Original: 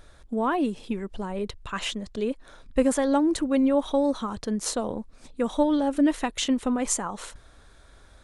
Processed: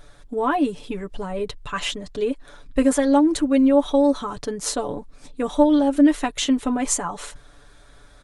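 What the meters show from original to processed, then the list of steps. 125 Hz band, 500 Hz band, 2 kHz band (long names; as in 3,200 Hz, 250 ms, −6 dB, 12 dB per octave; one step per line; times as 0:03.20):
can't be measured, +4.5 dB, +4.0 dB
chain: comb filter 6.9 ms, depth 69%
level +2 dB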